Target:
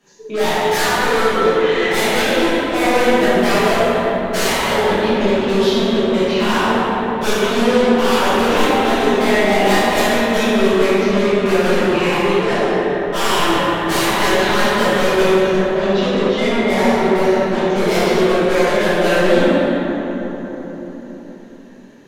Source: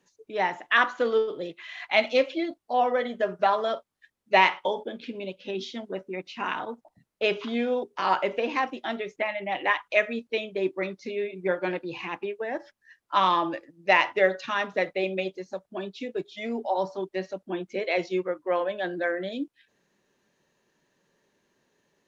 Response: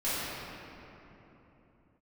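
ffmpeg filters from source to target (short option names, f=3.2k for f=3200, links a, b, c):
-filter_complex "[0:a]aeval=exprs='0.531*sin(PI/2*7.94*val(0)/0.531)':c=same,aeval=exprs='0.562*(cos(1*acos(clip(val(0)/0.562,-1,1)))-cos(1*PI/2))+0.0141*(cos(4*acos(clip(val(0)/0.562,-1,1)))-cos(4*PI/2))+0.158*(cos(5*acos(clip(val(0)/0.562,-1,1)))-cos(5*PI/2))+0.0708*(cos(7*acos(clip(val(0)/0.562,-1,1)))-cos(7*PI/2))':c=same[a];[1:a]atrim=start_sample=2205,asetrate=32193,aresample=44100[b];[a][b]afir=irnorm=-1:irlink=0,volume=-16.5dB"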